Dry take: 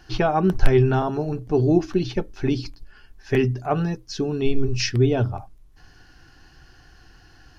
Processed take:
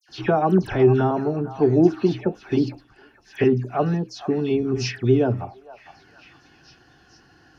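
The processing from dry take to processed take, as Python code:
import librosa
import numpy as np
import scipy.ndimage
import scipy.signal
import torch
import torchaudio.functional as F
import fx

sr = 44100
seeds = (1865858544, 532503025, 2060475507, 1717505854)

p1 = scipy.signal.sosfilt(scipy.signal.butter(2, 190.0, 'highpass', fs=sr, output='sos'), x)
p2 = fx.tilt_eq(p1, sr, slope=-2.0)
p3 = fx.dispersion(p2, sr, late='lows', ms=90.0, hz=2500.0)
y = p3 + fx.echo_stepped(p3, sr, ms=459, hz=950.0, octaves=0.7, feedback_pct=70, wet_db=-12, dry=0)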